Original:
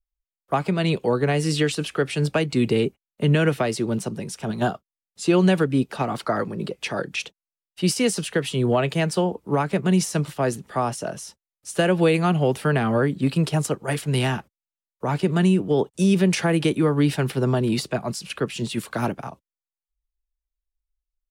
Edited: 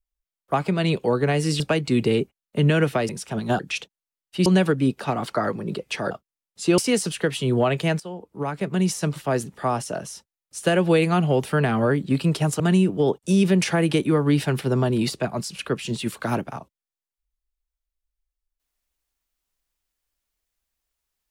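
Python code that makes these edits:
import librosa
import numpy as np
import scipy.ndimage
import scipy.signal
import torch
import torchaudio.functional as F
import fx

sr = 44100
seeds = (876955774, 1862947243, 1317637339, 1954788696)

y = fx.edit(x, sr, fx.cut(start_s=1.6, length_s=0.65),
    fx.cut(start_s=3.74, length_s=0.47),
    fx.swap(start_s=4.71, length_s=0.67, other_s=7.03, other_length_s=0.87),
    fx.fade_in_from(start_s=9.12, length_s=1.59, curve='qsin', floor_db=-17.5),
    fx.cut(start_s=13.72, length_s=1.59), tone=tone)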